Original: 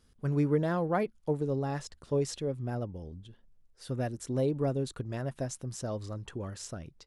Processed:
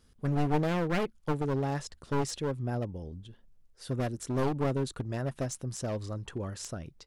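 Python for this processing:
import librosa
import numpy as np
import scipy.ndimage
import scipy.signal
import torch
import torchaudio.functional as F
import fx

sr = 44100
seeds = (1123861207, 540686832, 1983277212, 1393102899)

y = np.minimum(x, 2.0 * 10.0 ** (-30.5 / 20.0) - x)
y = y * 10.0 ** (2.0 / 20.0)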